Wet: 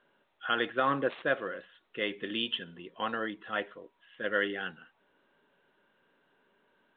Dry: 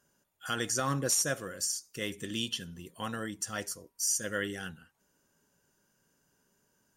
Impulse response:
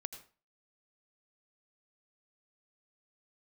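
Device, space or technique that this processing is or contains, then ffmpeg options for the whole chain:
telephone: -af "highpass=320,lowpass=3.2k,volume=5.5dB" -ar 8000 -c:a pcm_mulaw

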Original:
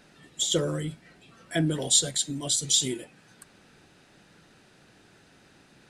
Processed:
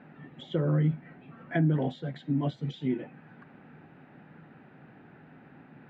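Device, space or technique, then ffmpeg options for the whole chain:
bass amplifier: -af "acompressor=threshold=-29dB:ratio=4,highpass=83,equalizer=f=150:t=q:w=4:g=9,equalizer=f=250:t=q:w=4:g=9,equalizer=f=800:t=q:w=4:g=5,lowpass=f=2.2k:w=0.5412,lowpass=f=2.2k:w=1.3066,volume=2dB"

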